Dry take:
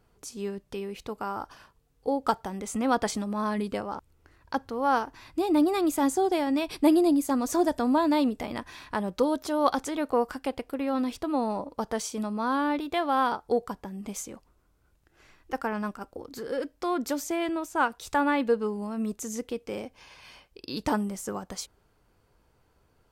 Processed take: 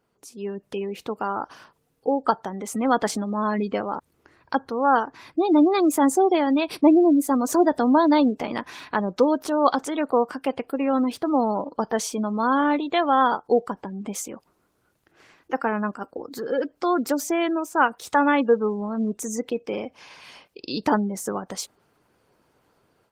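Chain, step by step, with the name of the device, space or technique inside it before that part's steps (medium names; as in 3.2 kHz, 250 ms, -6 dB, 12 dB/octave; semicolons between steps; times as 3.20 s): noise-suppressed video call (high-pass 160 Hz 12 dB/octave; spectral gate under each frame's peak -30 dB strong; level rider gain up to 9 dB; trim -2.5 dB; Opus 20 kbps 48 kHz)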